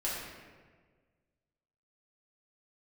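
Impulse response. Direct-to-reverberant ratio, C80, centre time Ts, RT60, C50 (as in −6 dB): −7.5 dB, 2.0 dB, 89 ms, 1.6 s, −0.5 dB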